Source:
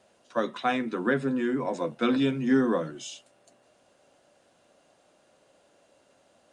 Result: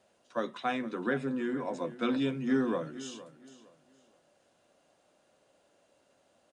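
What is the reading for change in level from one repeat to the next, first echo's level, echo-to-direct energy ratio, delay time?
-11.5 dB, -16.5 dB, -16.0 dB, 0.463 s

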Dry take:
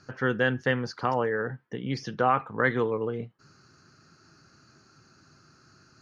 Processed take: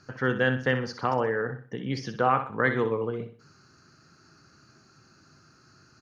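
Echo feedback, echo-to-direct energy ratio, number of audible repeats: 35%, -9.5 dB, 3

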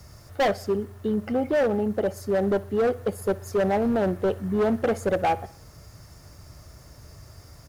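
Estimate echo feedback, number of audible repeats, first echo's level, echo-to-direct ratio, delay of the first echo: 53%, 3, -21.0 dB, -19.5 dB, 61 ms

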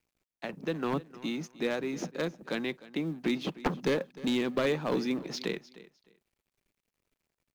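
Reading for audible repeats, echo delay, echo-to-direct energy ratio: 2, 0.305 s, -18.5 dB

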